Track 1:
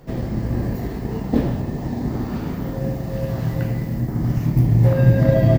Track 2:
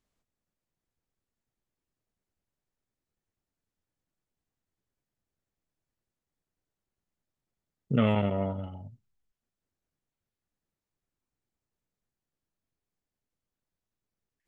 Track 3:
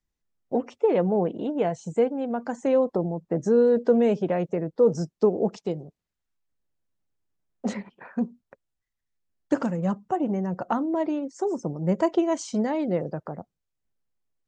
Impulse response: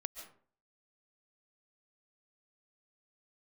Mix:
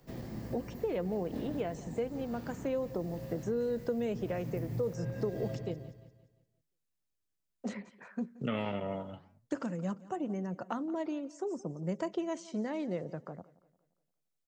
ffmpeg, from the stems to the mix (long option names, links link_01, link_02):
-filter_complex "[0:a]volume=-16dB,asplit=2[link_01][link_02];[link_02]volume=-12.5dB[link_03];[1:a]agate=range=-11dB:threshold=-36dB:ratio=16:detection=peak,highpass=frequency=180:poles=1,flanger=delay=6.5:depth=9.6:regen=-89:speed=1.7:shape=sinusoidal,adelay=500,volume=-0.5dB[link_04];[2:a]equalizer=frequency=830:width=3.8:gain=-5,volume=-9dB,asplit=3[link_05][link_06][link_07];[link_06]volume=-20.5dB[link_08];[link_07]apad=whole_len=246156[link_09];[link_01][link_09]sidechaincompress=threshold=-32dB:ratio=8:attack=6:release=1380[link_10];[link_03][link_08]amix=inputs=2:normalize=0,aecho=0:1:174|348|522|696|870|1044:1|0.41|0.168|0.0689|0.0283|0.0116[link_11];[link_10][link_04][link_05][link_11]amix=inputs=4:normalize=0,highshelf=frequency=2700:gain=9,acrossover=split=110|3000[link_12][link_13][link_14];[link_12]acompressor=threshold=-51dB:ratio=4[link_15];[link_13]acompressor=threshold=-30dB:ratio=4[link_16];[link_14]acompressor=threshold=-57dB:ratio=4[link_17];[link_15][link_16][link_17]amix=inputs=3:normalize=0"